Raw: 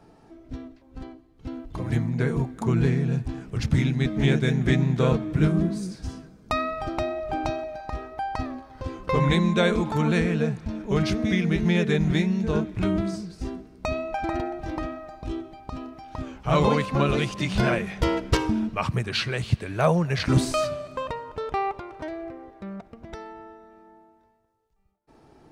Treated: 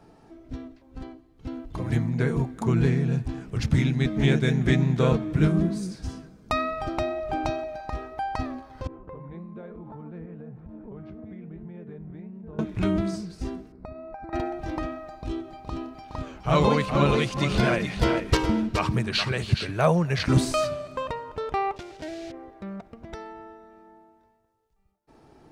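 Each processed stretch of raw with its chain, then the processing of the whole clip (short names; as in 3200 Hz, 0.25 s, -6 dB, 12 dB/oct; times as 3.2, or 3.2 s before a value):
8.87–12.59 LPF 1000 Hz + compressor 8:1, threshold -33 dBFS + flange 1.1 Hz, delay 5.5 ms, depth 7.2 ms, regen +80%
13.72–14.33 running mean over 14 samples + transient shaper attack +6 dB, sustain -1 dB + compressor 4:1, threshold -38 dBFS
15.06–19.71 bell 4200 Hz +2.5 dB 0.27 oct + echo 0.418 s -7.5 dB
21.76–22.34 block floating point 3-bit + Chebyshev low-pass 5000 Hz + bell 1100 Hz -11.5 dB 0.58 oct
whole clip: dry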